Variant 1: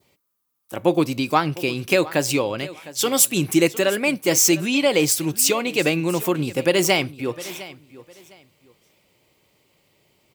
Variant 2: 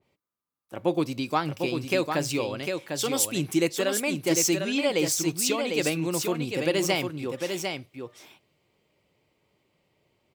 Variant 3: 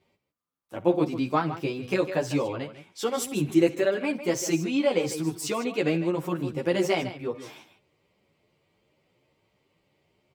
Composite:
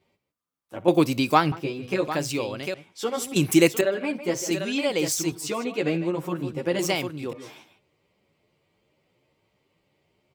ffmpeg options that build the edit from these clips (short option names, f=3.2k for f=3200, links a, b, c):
-filter_complex "[0:a]asplit=2[a][b];[1:a]asplit=3[c][d][e];[2:a]asplit=6[f][g][h][i][j][k];[f]atrim=end=0.882[l];[a]atrim=start=0.878:end=1.522[m];[g]atrim=start=1.518:end=2.082[n];[c]atrim=start=2.078:end=2.742[o];[h]atrim=start=2.738:end=3.362[p];[b]atrim=start=3.358:end=3.812[q];[i]atrim=start=3.808:end=4.512[r];[d]atrim=start=4.508:end=5.322[s];[j]atrim=start=5.318:end=6.792[t];[e]atrim=start=6.788:end=7.332[u];[k]atrim=start=7.328[v];[l][m]acrossfade=d=0.004:c1=hsin:c2=hsin[w];[w][n]acrossfade=d=0.004:c1=hsin:c2=hsin[x];[x][o]acrossfade=d=0.004:c1=hsin:c2=hsin[y];[y][p]acrossfade=d=0.004:c1=hsin:c2=hsin[z];[z][q]acrossfade=d=0.004:c1=hsin:c2=hsin[aa];[aa][r]acrossfade=d=0.004:c1=hsin:c2=hsin[ab];[ab][s]acrossfade=d=0.004:c1=hsin:c2=hsin[ac];[ac][t]acrossfade=d=0.004:c1=hsin:c2=hsin[ad];[ad][u]acrossfade=d=0.004:c1=hsin:c2=hsin[ae];[ae][v]acrossfade=d=0.004:c1=hsin:c2=hsin"